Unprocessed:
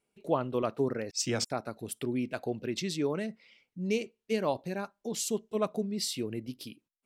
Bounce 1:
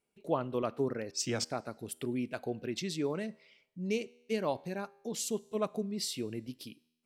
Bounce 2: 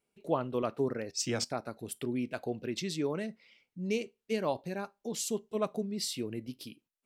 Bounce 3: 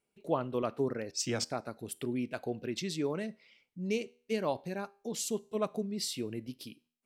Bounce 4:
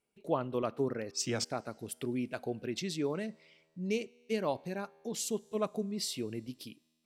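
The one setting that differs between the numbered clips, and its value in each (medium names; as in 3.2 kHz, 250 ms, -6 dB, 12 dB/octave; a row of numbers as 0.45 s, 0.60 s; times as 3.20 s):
feedback comb, decay: 0.94 s, 0.2 s, 0.45 s, 2.2 s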